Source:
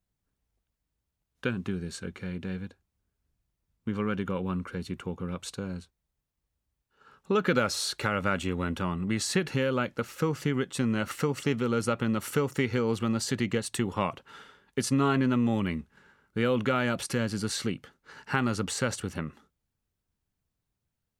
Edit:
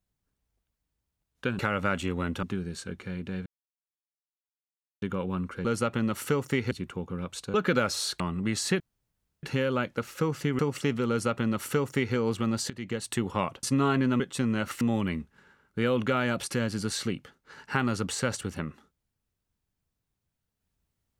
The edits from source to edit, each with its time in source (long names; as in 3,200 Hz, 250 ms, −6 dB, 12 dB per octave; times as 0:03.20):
0:02.62–0:04.18: silence
0:05.64–0:07.34: remove
0:08.00–0:08.84: move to 0:01.59
0:09.44: splice in room tone 0.63 s
0:10.60–0:11.21: move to 0:15.40
0:11.71–0:12.77: duplicate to 0:04.81
0:13.32–0:13.73: fade in, from −18 dB
0:14.25–0:14.83: remove